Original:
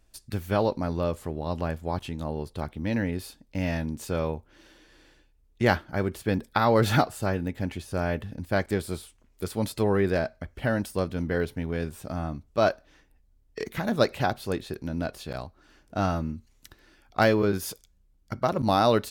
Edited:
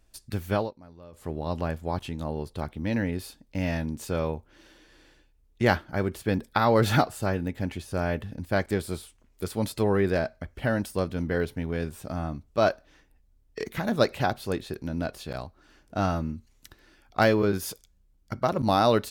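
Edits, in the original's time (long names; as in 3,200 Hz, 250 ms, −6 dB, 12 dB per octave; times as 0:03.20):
0:00.54–0:01.30: duck −20.5 dB, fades 0.18 s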